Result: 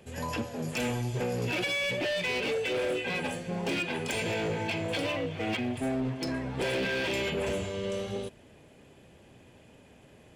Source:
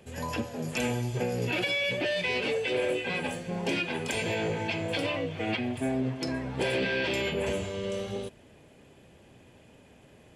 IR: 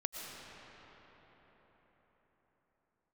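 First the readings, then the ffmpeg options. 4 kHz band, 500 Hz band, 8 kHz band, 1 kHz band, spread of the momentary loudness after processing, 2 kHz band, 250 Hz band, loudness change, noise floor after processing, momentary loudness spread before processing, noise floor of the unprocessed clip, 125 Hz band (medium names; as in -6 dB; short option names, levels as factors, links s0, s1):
-1.0 dB, -1.0 dB, 0.0 dB, -0.5 dB, 5 LU, -1.0 dB, -1.0 dB, -1.0 dB, -56 dBFS, 6 LU, -56 dBFS, -0.5 dB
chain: -af "asoftclip=type=hard:threshold=0.0501"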